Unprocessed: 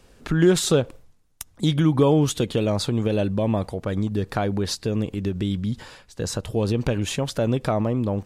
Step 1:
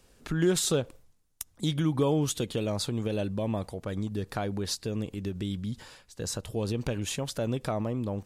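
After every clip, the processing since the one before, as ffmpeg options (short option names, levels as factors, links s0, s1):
-af "highshelf=f=4900:g=7.5,volume=0.398"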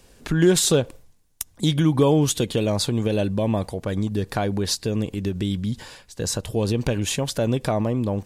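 -af "bandreject=f=1300:w=11,volume=2.51"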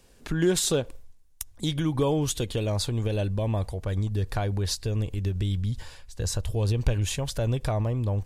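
-af "asubboost=boost=9.5:cutoff=71,volume=0.531"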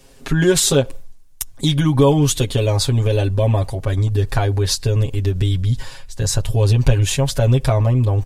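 -af "aecho=1:1:7.4:0.94,volume=2.24"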